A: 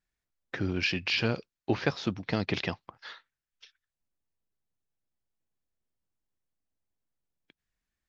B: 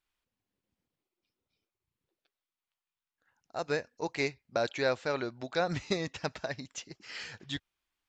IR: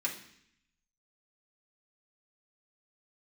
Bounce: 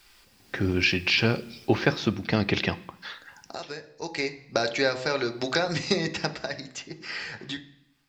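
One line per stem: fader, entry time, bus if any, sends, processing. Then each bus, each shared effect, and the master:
-2.0 dB, 0.00 s, send -12 dB, dry
1.64 s -5 dB -> 2.4 s -13.5 dB -> 3.79 s -13.5 dB -> 4.52 s -1.5 dB -> 6.07 s -1.5 dB -> 6.87 s -11.5 dB, 0.00 s, send -8 dB, bell 4800 Hz +10 dB 0.27 oct; de-hum 64.12 Hz, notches 18; three-band squash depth 100%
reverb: on, RT60 0.65 s, pre-delay 3 ms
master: low shelf 140 Hz +3.5 dB; AGC gain up to 6 dB

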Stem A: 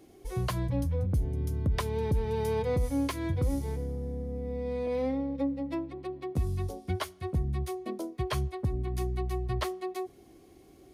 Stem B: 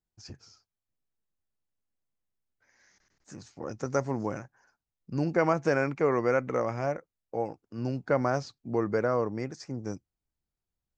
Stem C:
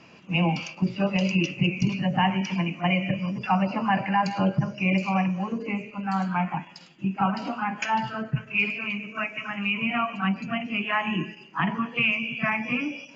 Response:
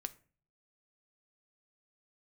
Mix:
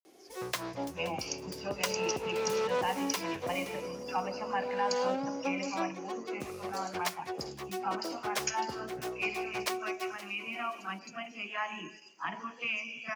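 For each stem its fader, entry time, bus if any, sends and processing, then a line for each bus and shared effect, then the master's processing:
+1.5 dB, 0.05 s, no send, echo send -16.5 dB, self-modulated delay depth 0.31 ms
-16.5 dB, 0.00 s, no send, no echo send, negative-ratio compressor -31 dBFS
-8.5 dB, 0.65 s, no send, no echo send, resonant high shelf 4100 Hz +11 dB, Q 1.5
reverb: off
echo: feedback echo 0.523 s, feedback 24%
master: HPF 400 Hz 12 dB/oct; bell 5500 Hz +3.5 dB 0.59 oct

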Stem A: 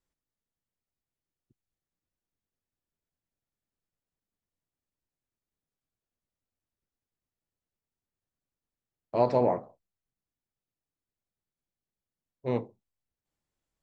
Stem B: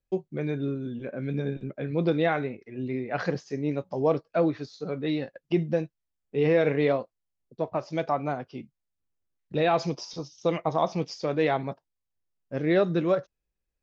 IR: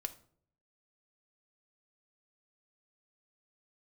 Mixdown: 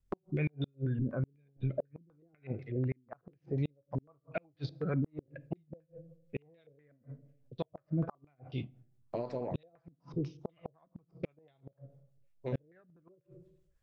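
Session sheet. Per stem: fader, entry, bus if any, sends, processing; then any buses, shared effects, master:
0.0 dB, 0.00 s, no send, compressor 8:1, threshold -31 dBFS, peak gain reduction 13 dB
-3.5 dB, 0.00 s, send -3.5 dB, resonant low shelf 170 Hz +10 dB, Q 1.5; stepped low-pass 8.1 Hz 250–3600 Hz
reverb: on, RT60 0.60 s, pre-delay 3 ms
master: rotary speaker horn 6 Hz; flipped gate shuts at -19 dBFS, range -42 dB; limiter -24 dBFS, peak gain reduction 7.5 dB

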